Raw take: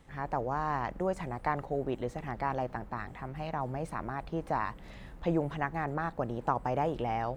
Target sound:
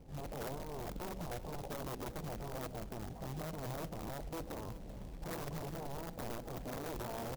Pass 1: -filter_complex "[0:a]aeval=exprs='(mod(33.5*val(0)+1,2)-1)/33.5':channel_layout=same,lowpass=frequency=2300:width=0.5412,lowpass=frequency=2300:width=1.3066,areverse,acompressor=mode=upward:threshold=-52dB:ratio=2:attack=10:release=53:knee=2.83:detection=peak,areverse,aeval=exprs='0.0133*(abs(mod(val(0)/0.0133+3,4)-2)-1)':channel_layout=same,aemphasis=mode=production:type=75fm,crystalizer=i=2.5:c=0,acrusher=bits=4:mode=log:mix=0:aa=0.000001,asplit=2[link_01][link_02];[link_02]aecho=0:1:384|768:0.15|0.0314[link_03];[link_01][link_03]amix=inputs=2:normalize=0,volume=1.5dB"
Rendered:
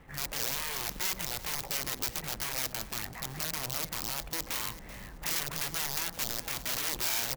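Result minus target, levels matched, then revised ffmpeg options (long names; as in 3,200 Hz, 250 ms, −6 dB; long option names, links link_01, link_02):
1,000 Hz band −7.0 dB
-filter_complex "[0:a]aeval=exprs='(mod(33.5*val(0)+1,2)-1)/33.5':channel_layout=same,lowpass=frequency=710:width=0.5412,lowpass=frequency=710:width=1.3066,areverse,acompressor=mode=upward:threshold=-52dB:ratio=2:attack=10:release=53:knee=2.83:detection=peak,areverse,aeval=exprs='0.0133*(abs(mod(val(0)/0.0133+3,4)-2)-1)':channel_layout=same,aemphasis=mode=production:type=75fm,crystalizer=i=2.5:c=0,acrusher=bits=4:mode=log:mix=0:aa=0.000001,asplit=2[link_01][link_02];[link_02]aecho=0:1:384|768:0.15|0.0314[link_03];[link_01][link_03]amix=inputs=2:normalize=0,volume=1.5dB"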